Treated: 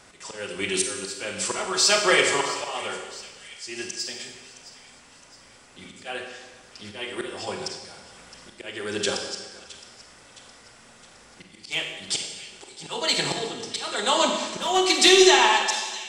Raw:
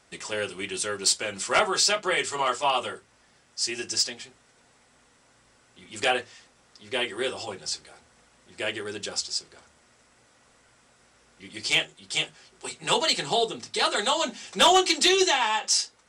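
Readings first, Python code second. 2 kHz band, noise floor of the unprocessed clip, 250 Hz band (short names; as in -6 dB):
+2.5 dB, -61 dBFS, +4.5 dB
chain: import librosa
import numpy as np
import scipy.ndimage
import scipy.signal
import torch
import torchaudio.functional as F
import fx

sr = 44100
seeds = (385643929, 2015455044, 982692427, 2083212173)

p1 = fx.rider(x, sr, range_db=10, speed_s=2.0)
p2 = x + (p1 * librosa.db_to_amplitude(-1.0))
p3 = fx.auto_swell(p2, sr, attack_ms=486.0)
p4 = fx.echo_split(p3, sr, split_hz=2100.0, low_ms=164, high_ms=665, feedback_pct=52, wet_db=-15.5)
y = fx.rev_schroeder(p4, sr, rt60_s=1.1, comb_ms=31, drr_db=3.5)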